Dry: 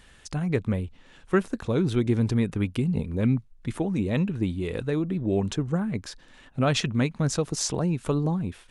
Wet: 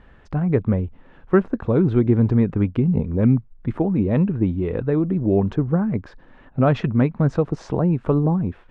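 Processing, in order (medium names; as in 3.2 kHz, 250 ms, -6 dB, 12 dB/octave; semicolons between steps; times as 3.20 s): low-pass 1.3 kHz 12 dB/octave; trim +6.5 dB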